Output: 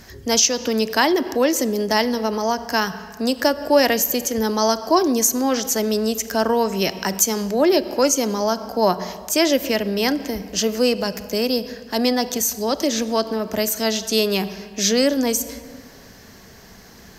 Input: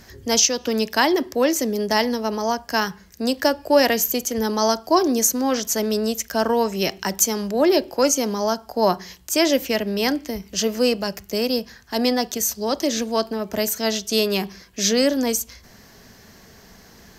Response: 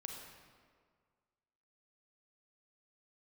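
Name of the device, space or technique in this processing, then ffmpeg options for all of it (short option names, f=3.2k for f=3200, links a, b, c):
ducked reverb: -filter_complex "[0:a]asplit=3[a][b][c];[1:a]atrim=start_sample=2205[d];[b][d]afir=irnorm=-1:irlink=0[e];[c]apad=whole_len=758029[f];[e][f]sidechaincompress=threshold=-27dB:ratio=8:attack=27:release=114,volume=-4dB[g];[a][g]amix=inputs=2:normalize=0"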